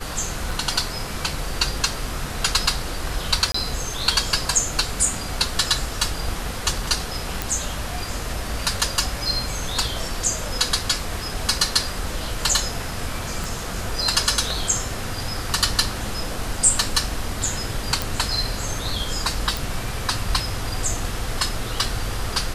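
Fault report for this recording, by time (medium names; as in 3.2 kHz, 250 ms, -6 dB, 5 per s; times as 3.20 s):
0.51 s: dropout 3.6 ms
3.52–3.54 s: dropout 24 ms
7.42 s: pop
13.44 s: pop
18.02 s: pop
19.57 s: pop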